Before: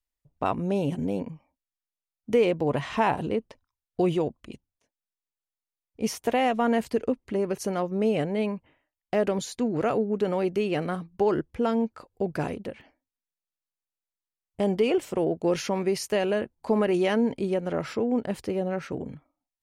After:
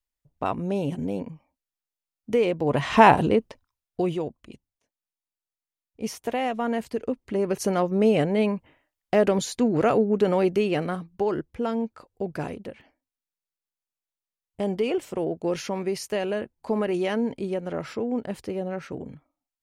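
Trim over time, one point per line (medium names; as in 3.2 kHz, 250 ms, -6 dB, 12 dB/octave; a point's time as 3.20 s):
2.58 s -0.5 dB
3.04 s +10 dB
4.18 s -3 dB
6.98 s -3 dB
7.65 s +4.5 dB
10.44 s +4.5 dB
11.29 s -2 dB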